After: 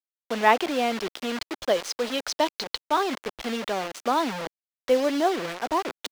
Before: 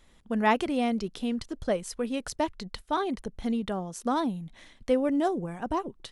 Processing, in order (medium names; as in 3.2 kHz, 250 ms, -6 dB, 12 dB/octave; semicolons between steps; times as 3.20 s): time-frequency box 1.61–2.88 s, 2.9–6.8 kHz +7 dB; word length cut 6-bit, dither none; three-band isolator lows -17 dB, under 320 Hz, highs -12 dB, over 5.9 kHz; reverse; upward compressor, threshold -32 dBFS; reverse; trim +5.5 dB